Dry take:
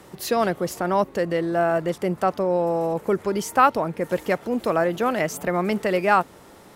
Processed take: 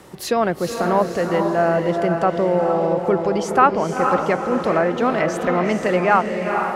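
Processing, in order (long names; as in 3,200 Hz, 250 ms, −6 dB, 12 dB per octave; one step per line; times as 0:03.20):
treble cut that deepens with the level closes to 2,400 Hz, closed at −16 dBFS
feedback delay with all-pass diffusion 460 ms, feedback 43%, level −4.5 dB
level +2.5 dB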